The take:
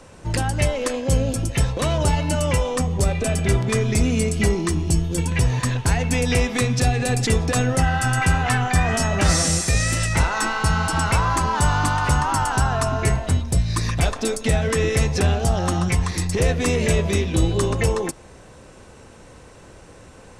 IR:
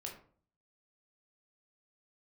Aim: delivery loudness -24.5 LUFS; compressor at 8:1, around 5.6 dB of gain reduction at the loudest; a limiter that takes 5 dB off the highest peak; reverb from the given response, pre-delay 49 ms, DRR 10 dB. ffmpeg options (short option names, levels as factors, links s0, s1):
-filter_complex "[0:a]acompressor=threshold=0.112:ratio=8,alimiter=limit=0.178:level=0:latency=1,asplit=2[s0][s1];[1:a]atrim=start_sample=2205,adelay=49[s2];[s1][s2]afir=irnorm=-1:irlink=0,volume=0.422[s3];[s0][s3]amix=inputs=2:normalize=0"